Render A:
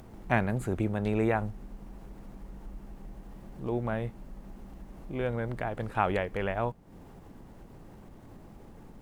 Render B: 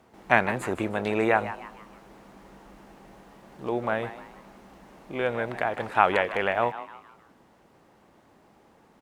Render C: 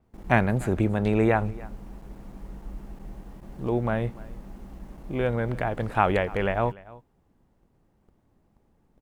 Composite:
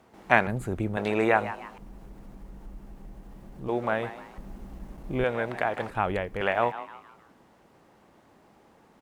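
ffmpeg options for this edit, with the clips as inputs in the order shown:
-filter_complex "[0:a]asplit=3[s0][s1][s2];[1:a]asplit=5[s3][s4][s5][s6][s7];[s3]atrim=end=0.472[s8];[s0]atrim=start=0.468:end=0.972[s9];[s4]atrim=start=0.968:end=1.782[s10];[s1]atrim=start=1.778:end=3.692[s11];[s5]atrim=start=3.688:end=4.382[s12];[2:a]atrim=start=4.378:end=5.242[s13];[s6]atrim=start=5.238:end=5.902[s14];[s2]atrim=start=5.898:end=6.412[s15];[s7]atrim=start=6.408[s16];[s8][s9]acrossfade=d=0.004:c1=hsin:c2=hsin[s17];[s17][s10]acrossfade=d=0.004:c1=hsin:c2=hsin[s18];[s18][s11]acrossfade=d=0.004:c1=hsin:c2=hsin[s19];[s19][s12]acrossfade=d=0.004:c1=hsin:c2=hsin[s20];[s20][s13]acrossfade=d=0.004:c1=hsin:c2=hsin[s21];[s21][s14]acrossfade=d=0.004:c1=hsin:c2=hsin[s22];[s22][s15]acrossfade=d=0.004:c1=hsin:c2=hsin[s23];[s23][s16]acrossfade=d=0.004:c1=hsin:c2=hsin"

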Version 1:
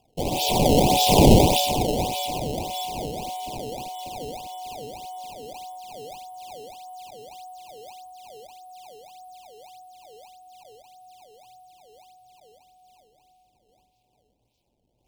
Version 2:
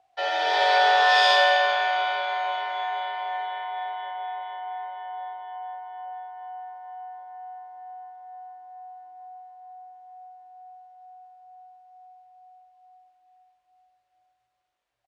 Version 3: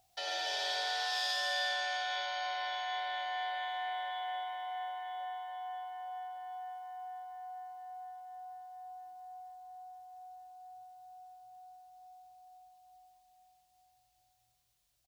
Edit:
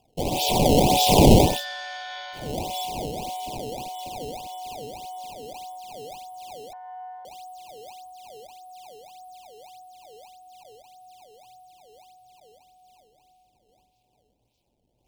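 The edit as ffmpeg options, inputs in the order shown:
-filter_complex "[0:a]asplit=3[s0][s1][s2];[s0]atrim=end=1.66[s3];[2:a]atrim=start=1.42:end=2.56[s4];[s1]atrim=start=2.32:end=6.732[s5];[1:a]atrim=start=6.728:end=7.252[s6];[s2]atrim=start=7.248[s7];[s3][s4]acrossfade=d=0.24:c1=tri:c2=tri[s8];[s8][s5]acrossfade=d=0.24:c1=tri:c2=tri[s9];[s9][s6]acrossfade=d=0.004:c1=hsin:c2=hsin[s10];[s10][s7]acrossfade=d=0.004:c1=hsin:c2=hsin"

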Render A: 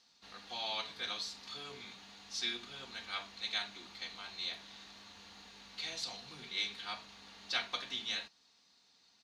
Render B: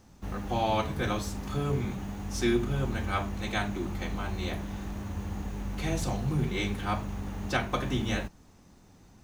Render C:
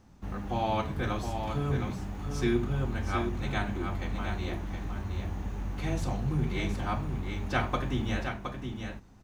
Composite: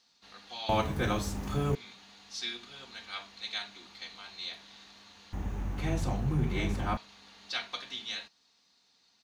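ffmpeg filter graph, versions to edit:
-filter_complex "[0:a]asplit=3[s0][s1][s2];[s0]atrim=end=0.692[s3];[1:a]atrim=start=0.688:end=1.752[s4];[s1]atrim=start=1.748:end=5.332[s5];[2:a]atrim=start=5.328:end=6.972[s6];[s2]atrim=start=6.968[s7];[s3][s4]acrossfade=d=0.004:c1=hsin:c2=hsin[s8];[s8][s5]acrossfade=d=0.004:c1=hsin:c2=hsin[s9];[s9][s6]acrossfade=d=0.004:c1=hsin:c2=hsin[s10];[s10][s7]acrossfade=d=0.004:c1=hsin:c2=hsin"

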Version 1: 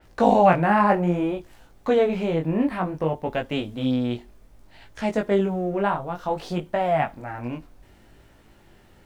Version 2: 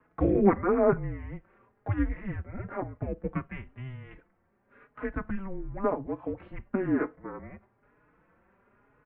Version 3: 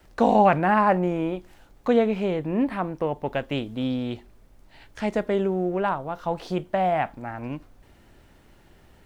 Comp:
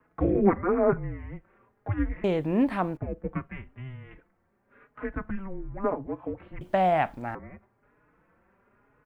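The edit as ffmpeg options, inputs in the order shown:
-filter_complex "[2:a]asplit=2[s0][s1];[1:a]asplit=3[s2][s3][s4];[s2]atrim=end=2.242[s5];[s0]atrim=start=2.238:end=2.972[s6];[s3]atrim=start=2.968:end=6.612[s7];[s1]atrim=start=6.608:end=7.352[s8];[s4]atrim=start=7.348[s9];[s5][s6]acrossfade=d=0.004:c1=hsin:c2=hsin[s10];[s10][s7]acrossfade=d=0.004:c1=hsin:c2=hsin[s11];[s11][s8]acrossfade=d=0.004:c1=hsin:c2=hsin[s12];[s12][s9]acrossfade=d=0.004:c1=hsin:c2=hsin"

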